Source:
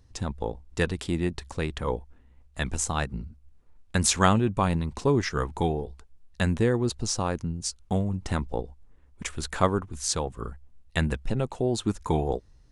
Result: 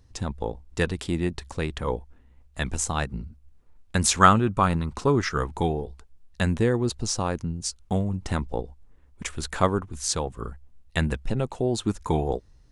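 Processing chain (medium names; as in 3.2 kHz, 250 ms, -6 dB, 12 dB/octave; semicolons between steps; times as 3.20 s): 4.20–5.37 s: peaking EQ 1.3 kHz +9.5 dB 0.42 oct; trim +1 dB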